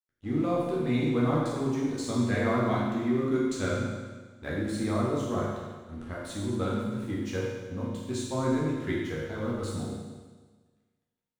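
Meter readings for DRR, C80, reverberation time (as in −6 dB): −7.0 dB, 1.5 dB, 1.4 s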